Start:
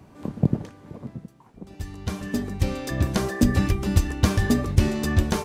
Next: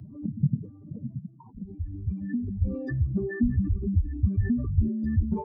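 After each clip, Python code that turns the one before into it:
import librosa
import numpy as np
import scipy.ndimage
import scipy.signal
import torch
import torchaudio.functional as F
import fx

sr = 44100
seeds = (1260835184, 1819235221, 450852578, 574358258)

y = fx.spec_expand(x, sr, power=3.5)
y = fx.band_squash(y, sr, depth_pct=40)
y = y * 10.0 ** (-2.5 / 20.0)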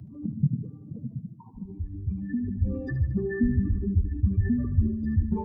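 y = fx.notch(x, sr, hz=610.0, q=12.0)
y = fx.echo_feedback(y, sr, ms=74, feedback_pct=59, wet_db=-11.5)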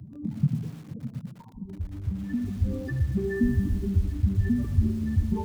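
y = fx.echo_crushed(x, sr, ms=117, feedback_pct=55, bits=7, wet_db=-11.5)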